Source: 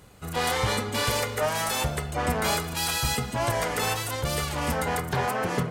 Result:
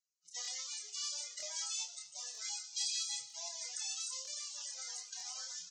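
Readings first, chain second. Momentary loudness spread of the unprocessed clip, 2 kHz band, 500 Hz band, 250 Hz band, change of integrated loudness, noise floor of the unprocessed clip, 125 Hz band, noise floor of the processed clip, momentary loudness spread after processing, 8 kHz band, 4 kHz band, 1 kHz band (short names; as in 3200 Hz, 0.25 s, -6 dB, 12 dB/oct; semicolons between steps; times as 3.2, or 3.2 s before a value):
3 LU, -24.0 dB, -33.0 dB, under -40 dB, -13.0 dB, -35 dBFS, under -40 dB, -64 dBFS, 7 LU, -5.0 dB, -9.0 dB, -30.0 dB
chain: half-waves squared off; gate -27 dBFS, range -30 dB; compressor 6:1, threshold -30 dBFS, peak gain reduction 12.5 dB; band-pass 6200 Hz, Q 2.1; loudest bins only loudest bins 64; doubler 28 ms -4.5 dB; two-slope reverb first 0.75 s, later 2.1 s, DRR 12.5 dB; crackling interface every 0.95 s, samples 1024, repeat, from 0.43; gain +4.5 dB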